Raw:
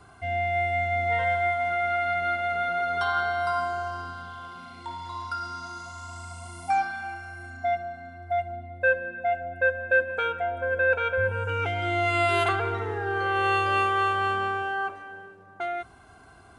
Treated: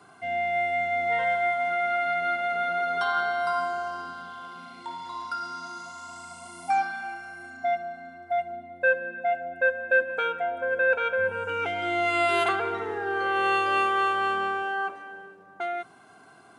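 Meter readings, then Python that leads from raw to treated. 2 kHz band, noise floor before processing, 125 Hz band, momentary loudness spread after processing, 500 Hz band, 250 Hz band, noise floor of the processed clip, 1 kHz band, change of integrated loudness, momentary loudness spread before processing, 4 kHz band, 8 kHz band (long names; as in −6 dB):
0.0 dB, −52 dBFS, −14.5 dB, 16 LU, 0.0 dB, 0.0 dB, −53 dBFS, 0.0 dB, 0.0 dB, 16 LU, 0.0 dB, 0.0 dB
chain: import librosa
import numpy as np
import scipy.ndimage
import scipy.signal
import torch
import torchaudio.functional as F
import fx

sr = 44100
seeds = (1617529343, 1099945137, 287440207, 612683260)

y = scipy.signal.sosfilt(scipy.signal.butter(4, 150.0, 'highpass', fs=sr, output='sos'), x)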